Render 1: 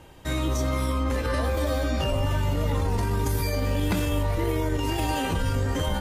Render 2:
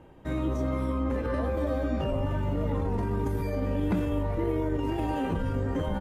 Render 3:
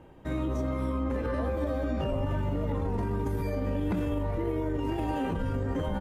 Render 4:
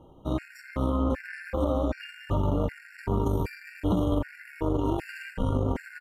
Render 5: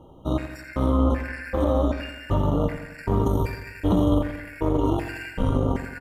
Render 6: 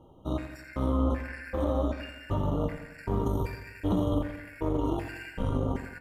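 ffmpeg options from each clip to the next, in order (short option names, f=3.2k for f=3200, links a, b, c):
-af "firequalizer=gain_entry='entry(100,0);entry(190,6);entry(790,1);entry(4500,-14)':delay=0.05:min_phase=1,volume=-5dB"
-af "alimiter=limit=-22dB:level=0:latency=1"
-af "aeval=exprs='0.0841*(cos(1*acos(clip(val(0)/0.0841,-1,1)))-cos(1*PI/2))+0.015*(cos(3*acos(clip(val(0)/0.0841,-1,1)))-cos(3*PI/2))':c=same,afftfilt=real='re*gt(sin(2*PI*1.3*pts/sr)*(1-2*mod(floor(b*sr/1024/1400),2)),0)':imag='im*gt(sin(2*PI*1.3*pts/sr)*(1-2*mod(floor(b*sr/1024/1400),2)),0)':win_size=1024:overlap=0.75,volume=6.5dB"
-af "aecho=1:1:88|176|264|352|440|528:0.299|0.161|0.0871|0.047|0.0254|0.0137,volume=4dB"
-af "flanger=delay=8.2:depth=7.9:regen=-78:speed=0.49:shape=triangular,volume=-2dB"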